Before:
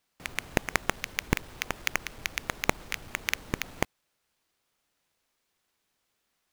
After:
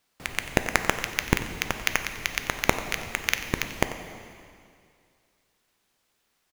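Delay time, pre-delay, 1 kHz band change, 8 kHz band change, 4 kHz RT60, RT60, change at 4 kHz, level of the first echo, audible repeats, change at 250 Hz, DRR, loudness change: 91 ms, 4 ms, +5.0 dB, +4.5 dB, 2.1 s, 2.3 s, +5.0 dB, -15.0 dB, 1, +4.5 dB, 7.0 dB, +4.5 dB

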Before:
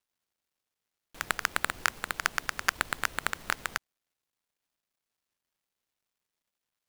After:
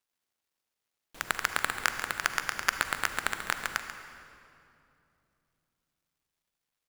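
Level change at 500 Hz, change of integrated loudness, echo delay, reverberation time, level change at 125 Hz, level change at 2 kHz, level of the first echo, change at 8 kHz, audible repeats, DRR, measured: +0.5 dB, +0.5 dB, 0.138 s, 2.7 s, -1.0 dB, +0.5 dB, -12.0 dB, +0.5 dB, 1, 6.5 dB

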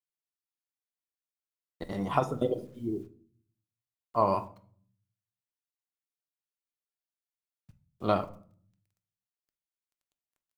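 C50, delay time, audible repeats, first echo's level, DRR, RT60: 17.0 dB, none, none, none, 8.5 dB, 0.50 s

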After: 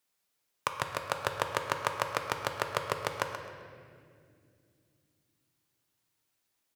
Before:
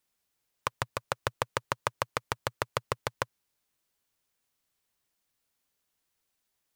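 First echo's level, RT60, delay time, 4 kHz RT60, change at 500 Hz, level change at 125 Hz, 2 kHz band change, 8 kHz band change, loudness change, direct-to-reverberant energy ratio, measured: -11.0 dB, 2.4 s, 0.13 s, 1.6 s, +1.5 dB, -3.0 dB, +1.5 dB, +1.0 dB, +1.0 dB, 4.0 dB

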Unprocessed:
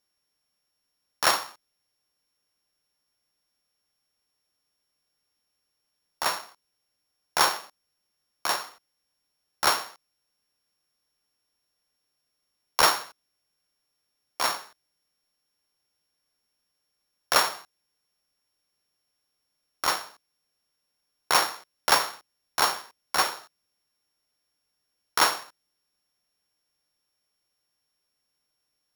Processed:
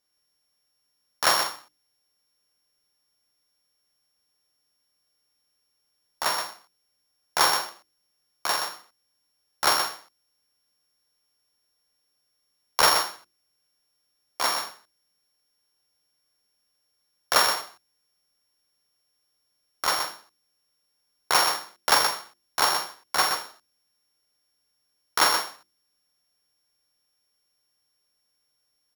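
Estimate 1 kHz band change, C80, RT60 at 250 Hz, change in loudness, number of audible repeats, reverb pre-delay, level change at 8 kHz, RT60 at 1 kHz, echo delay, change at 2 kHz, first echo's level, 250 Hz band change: +1.5 dB, none, none, +1.5 dB, 2, none, +2.5 dB, none, 45 ms, +1.5 dB, -7.5 dB, +0.5 dB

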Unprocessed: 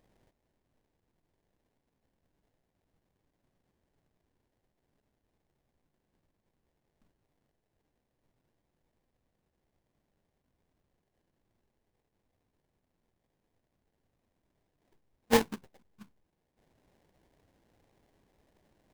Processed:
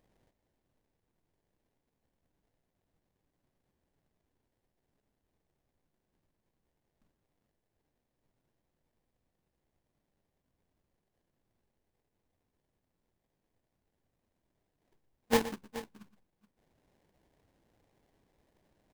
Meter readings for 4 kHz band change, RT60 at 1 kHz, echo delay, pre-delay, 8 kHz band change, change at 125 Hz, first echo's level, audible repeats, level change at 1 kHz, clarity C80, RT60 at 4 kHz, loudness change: -2.5 dB, none, 0.119 s, none, -2.5 dB, -2.5 dB, -14.5 dB, 2, -2.5 dB, none, none, -3.5 dB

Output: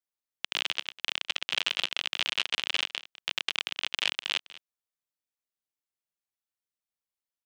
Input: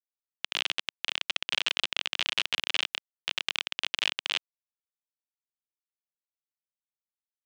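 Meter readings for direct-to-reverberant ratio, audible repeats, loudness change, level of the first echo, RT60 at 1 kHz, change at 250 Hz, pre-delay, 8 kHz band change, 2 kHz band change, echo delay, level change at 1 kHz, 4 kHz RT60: none, 1, 0.0 dB, -19.0 dB, none, 0.0 dB, none, 0.0 dB, 0.0 dB, 0.203 s, 0.0 dB, none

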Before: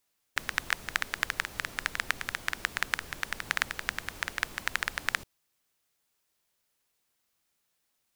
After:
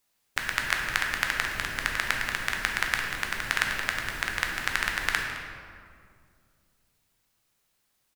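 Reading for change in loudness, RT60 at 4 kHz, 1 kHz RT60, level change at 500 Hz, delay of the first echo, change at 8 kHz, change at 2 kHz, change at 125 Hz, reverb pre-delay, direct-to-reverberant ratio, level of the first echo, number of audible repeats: +4.5 dB, 1.2 s, 2.0 s, +5.0 dB, 0.213 s, +3.5 dB, +5.0 dB, +7.0 dB, 9 ms, 0.5 dB, -14.5 dB, 1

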